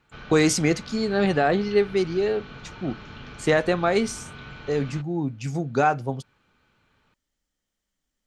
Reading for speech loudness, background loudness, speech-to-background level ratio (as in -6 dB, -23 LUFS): -24.0 LUFS, -41.5 LUFS, 17.5 dB